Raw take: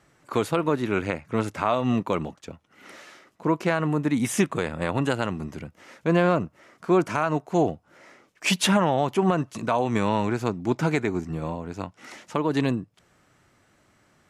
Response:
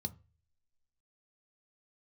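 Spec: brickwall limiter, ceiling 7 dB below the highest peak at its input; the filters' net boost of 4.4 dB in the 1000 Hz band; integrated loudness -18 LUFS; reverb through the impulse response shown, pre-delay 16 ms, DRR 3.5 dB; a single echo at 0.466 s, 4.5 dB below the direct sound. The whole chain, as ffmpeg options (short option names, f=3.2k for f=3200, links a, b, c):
-filter_complex "[0:a]equalizer=f=1k:t=o:g=5.5,alimiter=limit=-14dB:level=0:latency=1,aecho=1:1:466:0.596,asplit=2[a][b];[1:a]atrim=start_sample=2205,adelay=16[c];[b][c]afir=irnorm=-1:irlink=0,volume=-1.5dB[d];[a][d]amix=inputs=2:normalize=0,volume=3dB"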